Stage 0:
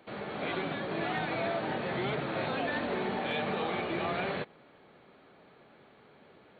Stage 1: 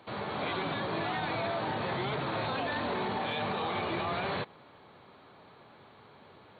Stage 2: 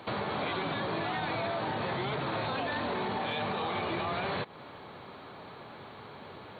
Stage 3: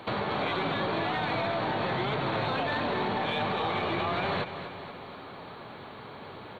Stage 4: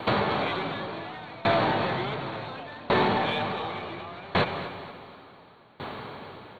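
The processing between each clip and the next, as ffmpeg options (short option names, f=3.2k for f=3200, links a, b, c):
-af "equalizer=f=100:t=o:w=0.67:g=10,equalizer=f=1k:t=o:w=0.67:g=8,equalizer=f=4k:t=o:w=0.67:g=7,alimiter=level_in=1dB:limit=-24dB:level=0:latency=1:release=10,volume=-1dB"
-af "acompressor=threshold=-40dB:ratio=4,volume=8.5dB"
-af "aeval=exprs='0.0794*(cos(1*acos(clip(val(0)/0.0794,-1,1)))-cos(1*PI/2))+0.00251*(cos(3*acos(clip(val(0)/0.0794,-1,1)))-cos(3*PI/2))+0.000631*(cos(8*acos(clip(val(0)/0.0794,-1,1)))-cos(8*PI/2))':c=same,aecho=1:1:239|478|717|956|1195|1434:0.282|0.161|0.0916|0.0522|0.0298|0.017,volume=3.5dB"
-af "aeval=exprs='val(0)*pow(10,-23*if(lt(mod(0.69*n/s,1),2*abs(0.69)/1000),1-mod(0.69*n/s,1)/(2*abs(0.69)/1000),(mod(0.69*n/s,1)-2*abs(0.69)/1000)/(1-2*abs(0.69)/1000))/20)':c=same,volume=9dB"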